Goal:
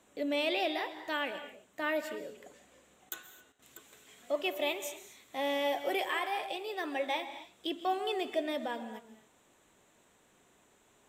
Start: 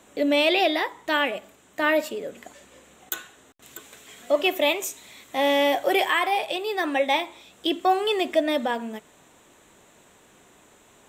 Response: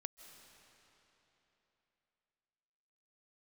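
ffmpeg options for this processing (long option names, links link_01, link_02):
-filter_complex "[1:a]atrim=start_sample=2205,afade=type=out:start_time=0.38:duration=0.01,atrim=end_sample=17199,asetrate=52920,aresample=44100[link_01];[0:a][link_01]afir=irnorm=-1:irlink=0,volume=-5dB"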